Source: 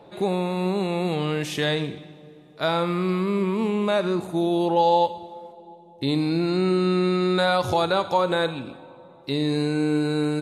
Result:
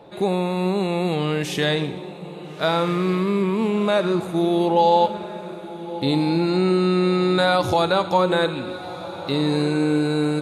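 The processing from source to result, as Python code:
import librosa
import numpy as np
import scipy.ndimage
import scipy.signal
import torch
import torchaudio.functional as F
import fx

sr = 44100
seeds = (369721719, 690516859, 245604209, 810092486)

y = fx.echo_diffused(x, sr, ms=1348, feedback_pct=42, wet_db=-14.0)
y = y * 10.0 ** (2.5 / 20.0)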